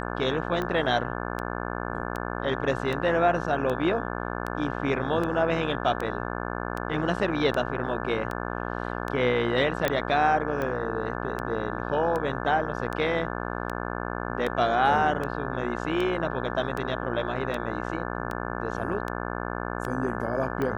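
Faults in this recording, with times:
buzz 60 Hz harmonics 29 -32 dBFS
tick 78 rpm -18 dBFS
9.88 s: pop -10 dBFS

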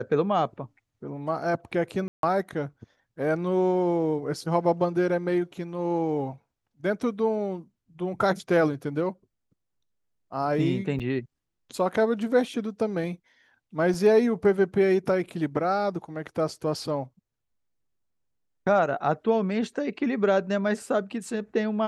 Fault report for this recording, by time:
2.08–2.23 s: dropout 152 ms
10.99–11.00 s: dropout 7.4 ms
13.94 s: dropout 2.7 ms

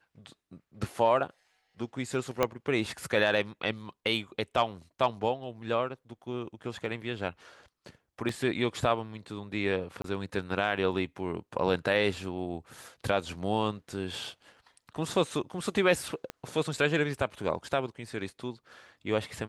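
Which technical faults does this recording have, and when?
2.43 s: pop -11 dBFS
8.29 s: dropout 2.5 ms
10.02–10.04 s: dropout 23 ms
16.30 s: pop -21 dBFS

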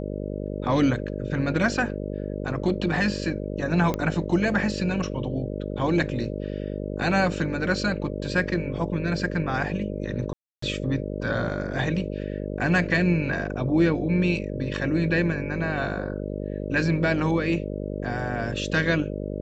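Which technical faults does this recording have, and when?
buzz 50 Hz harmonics 12 -31 dBFS
3.94 s: pop -13 dBFS
10.33–10.62 s: dropout 294 ms

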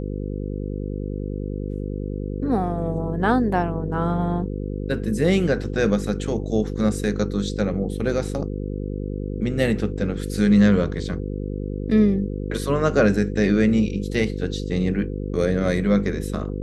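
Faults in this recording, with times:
buzz 50 Hz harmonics 10 -28 dBFS

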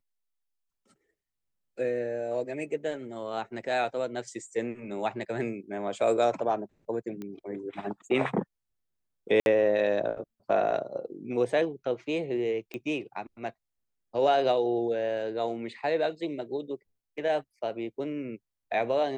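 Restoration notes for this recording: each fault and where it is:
7.22 s: pop -26 dBFS
9.40–9.46 s: dropout 61 ms
12.74 s: pop -24 dBFS

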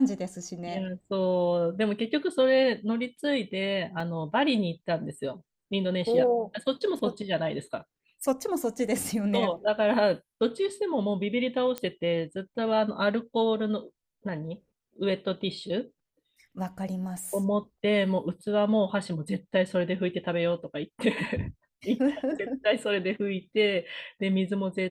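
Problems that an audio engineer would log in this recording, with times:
4.00 s: dropout 3.9 ms
11.78 s: pop -16 dBFS

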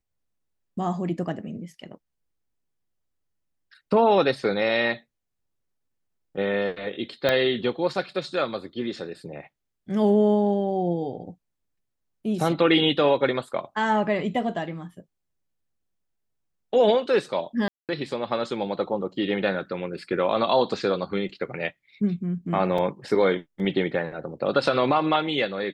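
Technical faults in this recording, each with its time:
7.29 s: pop -9 dBFS
17.68–17.89 s: dropout 208 ms
22.78 s: dropout 3.4 ms

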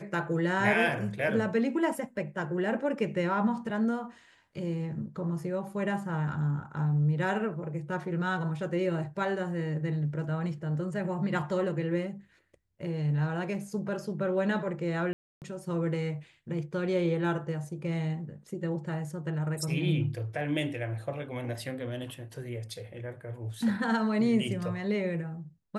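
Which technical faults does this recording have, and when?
15.13–15.42 s: dropout 288 ms

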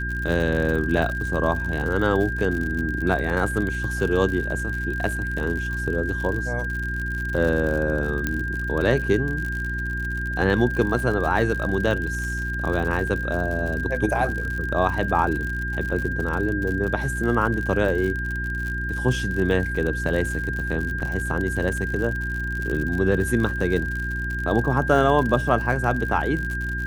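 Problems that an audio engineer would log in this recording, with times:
crackle 69 per s -28 dBFS
hum 60 Hz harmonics 6 -29 dBFS
whine 1.6 kHz -28 dBFS
8.27 s: pop -10 dBFS
21.00–21.01 s: dropout 5.6 ms

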